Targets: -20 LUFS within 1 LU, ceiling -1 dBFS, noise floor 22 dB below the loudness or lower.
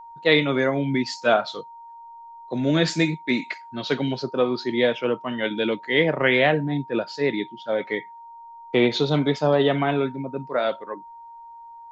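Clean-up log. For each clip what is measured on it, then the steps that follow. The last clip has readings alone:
steady tone 930 Hz; tone level -40 dBFS; loudness -23.0 LUFS; peak -4.0 dBFS; loudness target -20.0 LUFS
-> notch 930 Hz, Q 30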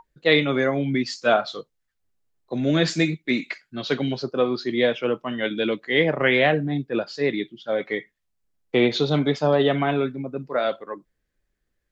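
steady tone none; loudness -23.0 LUFS; peak -4.5 dBFS; loudness target -20.0 LUFS
-> gain +3 dB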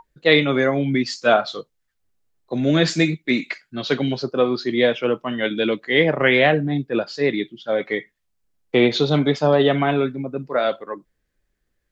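loudness -20.0 LUFS; peak -1.5 dBFS; noise floor -74 dBFS

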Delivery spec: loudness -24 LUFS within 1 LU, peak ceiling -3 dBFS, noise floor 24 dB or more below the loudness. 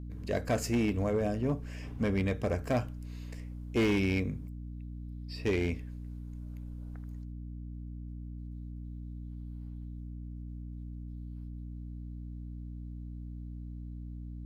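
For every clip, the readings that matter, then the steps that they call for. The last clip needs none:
clipped 0.7%; flat tops at -23.0 dBFS; hum 60 Hz; harmonics up to 300 Hz; hum level -39 dBFS; loudness -36.0 LUFS; peak -23.0 dBFS; loudness target -24.0 LUFS
-> clip repair -23 dBFS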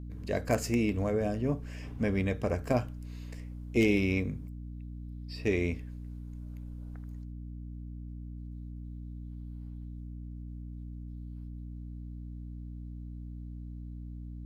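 clipped 0.0%; hum 60 Hz; harmonics up to 300 Hz; hum level -39 dBFS
-> de-hum 60 Hz, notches 5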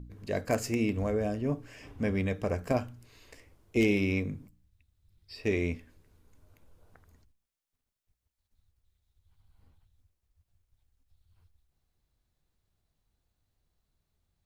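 hum none; loudness -31.0 LUFS; peak -14.0 dBFS; loudness target -24.0 LUFS
-> gain +7 dB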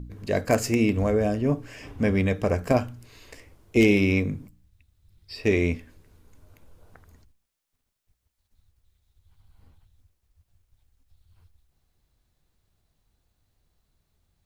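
loudness -24.0 LUFS; peak -7.0 dBFS; noise floor -78 dBFS

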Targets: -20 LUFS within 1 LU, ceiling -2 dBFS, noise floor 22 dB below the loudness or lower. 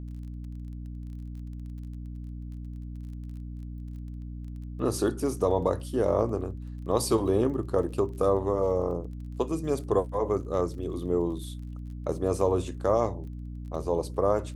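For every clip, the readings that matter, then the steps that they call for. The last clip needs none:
ticks 24/s; hum 60 Hz; harmonics up to 300 Hz; hum level -35 dBFS; loudness -28.5 LUFS; peak -10.5 dBFS; loudness target -20.0 LUFS
-> de-click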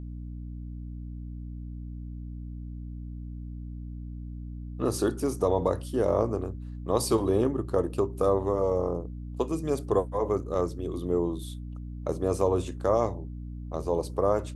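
ticks 0/s; hum 60 Hz; harmonics up to 300 Hz; hum level -35 dBFS
-> notches 60/120/180/240/300 Hz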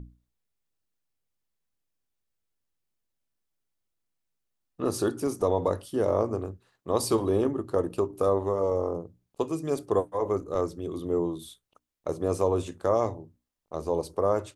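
hum none; loudness -28.5 LUFS; peak -11.0 dBFS; loudness target -20.0 LUFS
-> gain +8.5 dB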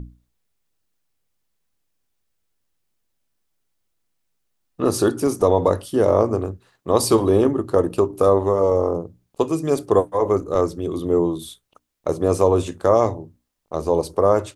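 loudness -20.0 LUFS; peak -2.5 dBFS; noise floor -73 dBFS

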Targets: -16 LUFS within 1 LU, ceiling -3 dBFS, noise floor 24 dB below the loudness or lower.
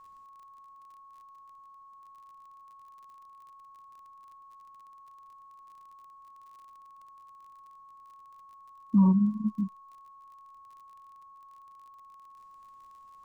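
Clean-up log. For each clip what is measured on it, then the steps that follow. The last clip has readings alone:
ticks 38/s; steady tone 1100 Hz; tone level -50 dBFS; loudness -26.0 LUFS; peak -14.5 dBFS; loudness target -16.0 LUFS
-> de-click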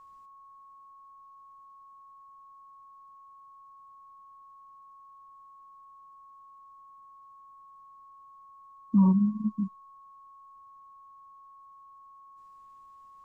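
ticks 0/s; steady tone 1100 Hz; tone level -50 dBFS
-> notch 1100 Hz, Q 30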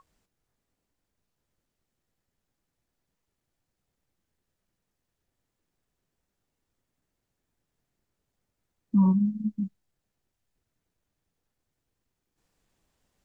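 steady tone none; loudness -25.5 LUFS; peak -14.0 dBFS; loudness target -16.0 LUFS
-> gain +9.5 dB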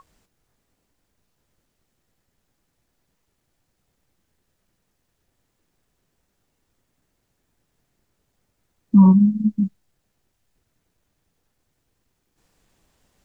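loudness -16.5 LUFS; peak -4.5 dBFS; noise floor -74 dBFS

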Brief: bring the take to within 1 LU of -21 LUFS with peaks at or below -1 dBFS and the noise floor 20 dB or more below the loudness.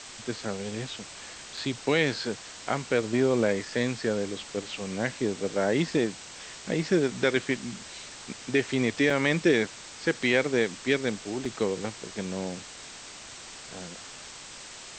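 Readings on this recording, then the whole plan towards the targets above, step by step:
dropouts 3; longest dropout 3.5 ms; noise floor -44 dBFS; noise floor target -48 dBFS; loudness -28.0 LUFS; peak -10.0 dBFS; loudness target -21.0 LUFS
-> interpolate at 1.57/9.1/11.45, 3.5 ms; noise print and reduce 6 dB; gain +7 dB

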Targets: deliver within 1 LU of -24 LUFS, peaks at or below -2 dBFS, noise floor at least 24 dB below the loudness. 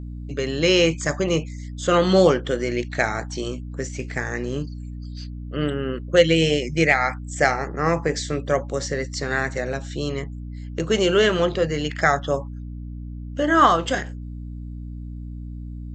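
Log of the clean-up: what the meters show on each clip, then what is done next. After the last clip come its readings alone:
hum 60 Hz; harmonics up to 300 Hz; hum level -31 dBFS; loudness -22.0 LUFS; peak -3.5 dBFS; loudness target -24.0 LUFS
-> notches 60/120/180/240/300 Hz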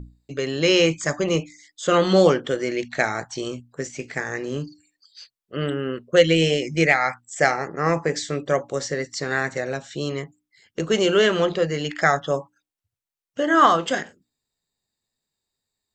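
hum none; loudness -22.0 LUFS; peak -3.5 dBFS; loudness target -24.0 LUFS
-> gain -2 dB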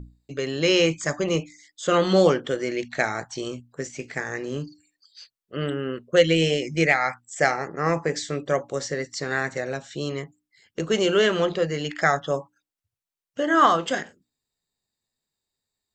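loudness -24.0 LUFS; peak -5.5 dBFS; noise floor -89 dBFS

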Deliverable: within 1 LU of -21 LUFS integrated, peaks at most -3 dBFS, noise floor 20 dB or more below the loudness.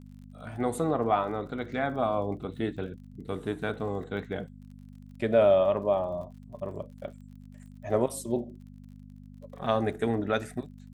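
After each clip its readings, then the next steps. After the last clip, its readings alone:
ticks 44/s; hum 50 Hz; harmonics up to 250 Hz; hum level -46 dBFS; loudness -29.5 LUFS; peak -11.0 dBFS; loudness target -21.0 LUFS
-> de-click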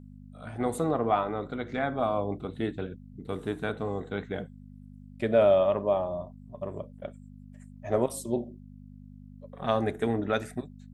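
ticks 0/s; hum 50 Hz; harmonics up to 250 Hz; hum level -46 dBFS
-> de-hum 50 Hz, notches 5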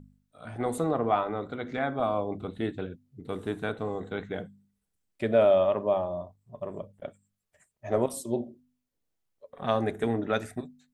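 hum none; loudness -29.5 LUFS; peak -10.5 dBFS; loudness target -21.0 LUFS
-> gain +8.5 dB; limiter -3 dBFS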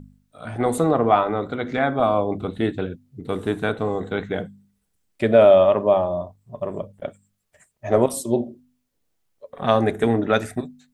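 loudness -21.0 LUFS; peak -3.0 dBFS; noise floor -72 dBFS

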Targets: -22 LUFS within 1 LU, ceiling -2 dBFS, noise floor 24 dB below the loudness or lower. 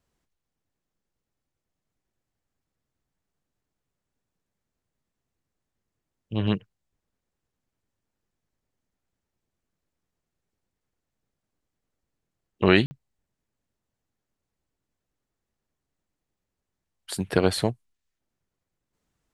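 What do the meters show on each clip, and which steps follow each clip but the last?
dropouts 1; longest dropout 50 ms; loudness -25.0 LUFS; peak -3.0 dBFS; loudness target -22.0 LUFS
-> interpolate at 12.86, 50 ms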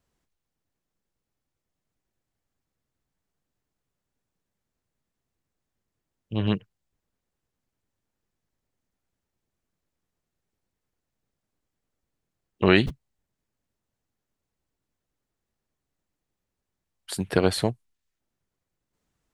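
dropouts 0; loudness -25.0 LUFS; peak -3.0 dBFS; loudness target -22.0 LUFS
-> gain +3 dB; limiter -2 dBFS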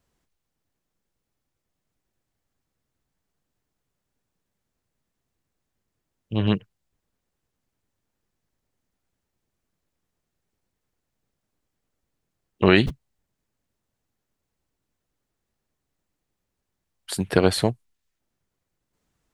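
loudness -22.5 LUFS; peak -2.0 dBFS; noise floor -81 dBFS

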